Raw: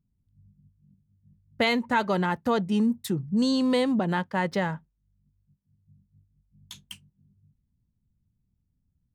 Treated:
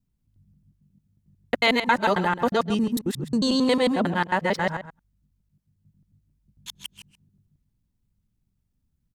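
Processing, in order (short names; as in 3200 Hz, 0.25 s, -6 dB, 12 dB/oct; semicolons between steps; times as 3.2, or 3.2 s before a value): local time reversal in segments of 90 ms; bell 120 Hz -6.5 dB 2.9 oct; outdoor echo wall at 23 m, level -12 dB; gain +5 dB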